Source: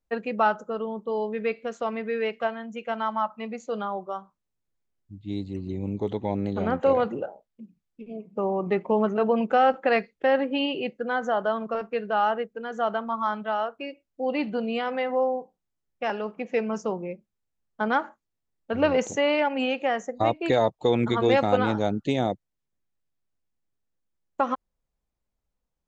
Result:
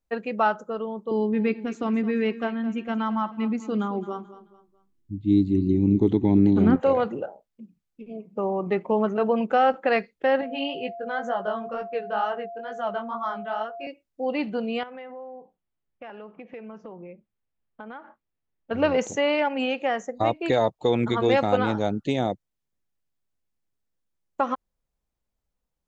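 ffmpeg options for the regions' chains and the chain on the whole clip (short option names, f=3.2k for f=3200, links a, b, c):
-filter_complex "[0:a]asettb=1/sr,asplit=3[a][b][c];[a]atrim=end=1.114[d];[b]atrim=start=1.11:end=6.76,asetpts=PTS-STARTPTS,afade=t=in:d=0.004:c=qsin,afade=t=out:st=5.646:d=0.004:c=qsin,lowshelf=f=420:t=q:w=3:g=8,aecho=1:1:217|434|651:0.178|0.0622|0.0218,atrim=end_sample=249165[e];[c]atrim=start=6.756[f];[d][e]acrossfade=d=0.004:c1=hsin:c2=qsin[g];[g][f]acrossfade=d=0.004:c1=qsin:c2=hsin,asettb=1/sr,asplit=3[h][i][j];[h]atrim=end=10.414[k];[i]atrim=start=10.41:end=13.87,asetpts=PTS-STARTPTS,afade=t=in:d=0.004:c=qsin,afade=t=out:st=3.456:d=0.004:c=qsin,flanger=delay=15.5:depth=6.1:speed=2.1,bandreject=f=300:w=8.4,aeval=exprs='val(0)+0.0178*sin(2*PI*690*n/s)':c=same[l];[j]atrim=start=13.866[m];[k][l]acrossfade=d=0.004:c1=hsin:c2=qsin[n];[n][m]acrossfade=d=0.004:c1=qsin:c2=hsin,asettb=1/sr,asplit=3[o][p][q];[o]atrim=end=14.834[r];[p]atrim=start=14.83:end=18.71,asetpts=PTS-STARTPTS,afade=t=in:d=0.004:c=qsin,afade=t=out:st=3.876:d=0.004:c=qsin,lowpass=f=3.4k:w=0.5412,lowpass=f=3.4k:w=1.3066,acompressor=threshold=-39dB:ratio=4:attack=3.2:release=140:knee=1:detection=peak[s];[q]atrim=start=18.706[t];[r][s]acrossfade=d=0.004:c1=hsin:c2=qsin[u];[u][t]acrossfade=d=0.004:c1=qsin:c2=hsin"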